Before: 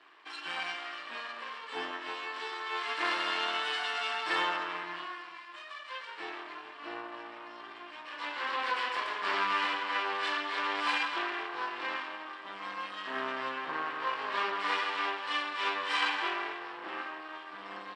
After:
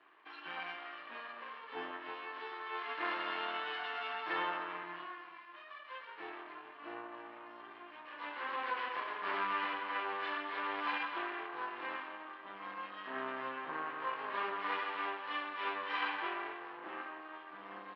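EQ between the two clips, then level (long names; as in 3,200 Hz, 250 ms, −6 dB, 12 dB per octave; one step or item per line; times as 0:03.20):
low-pass filter 6,900 Hz
high-frequency loss of the air 370 metres
−3.0 dB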